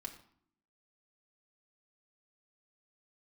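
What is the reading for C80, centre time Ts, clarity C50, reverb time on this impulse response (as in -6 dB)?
13.5 dB, 12 ms, 11.0 dB, 0.65 s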